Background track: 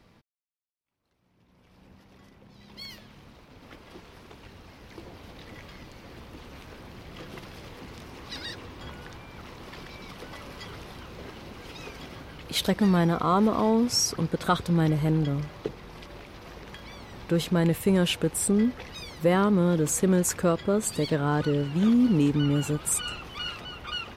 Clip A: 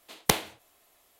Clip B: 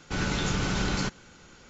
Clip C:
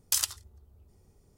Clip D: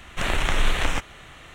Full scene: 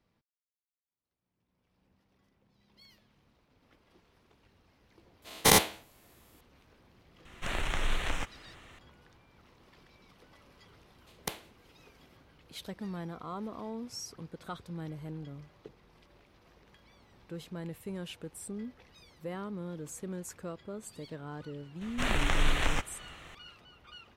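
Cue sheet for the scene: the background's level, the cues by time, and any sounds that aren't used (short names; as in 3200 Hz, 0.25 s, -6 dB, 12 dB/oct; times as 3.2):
background track -17.5 dB
5.22 add A -4.5 dB + spectral dilation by 0.12 s
7.25 add D -9.5 dB
10.98 add A -14 dB
21.81 add D -5.5 dB
not used: B, C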